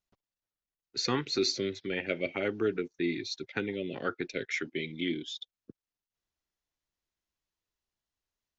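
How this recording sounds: noise floor -94 dBFS; spectral tilt -4.0 dB/octave

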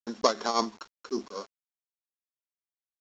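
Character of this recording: a buzz of ramps at a fixed pitch in blocks of 8 samples; tremolo triangle 5.2 Hz, depth 80%; a quantiser's noise floor 10-bit, dither none; µ-law

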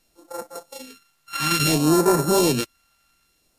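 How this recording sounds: a buzz of ramps at a fixed pitch in blocks of 32 samples; phasing stages 2, 0.59 Hz, lowest notch 400–2900 Hz; a quantiser's noise floor 12-bit, dither triangular; MP3

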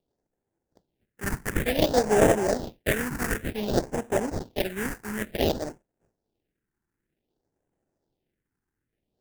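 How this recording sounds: aliases and images of a low sample rate 1.2 kHz, jitter 20%; phasing stages 4, 0.55 Hz, lowest notch 570–4200 Hz

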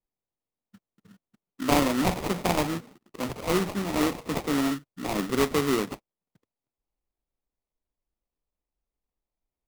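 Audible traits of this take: aliases and images of a low sample rate 1.6 kHz, jitter 20%

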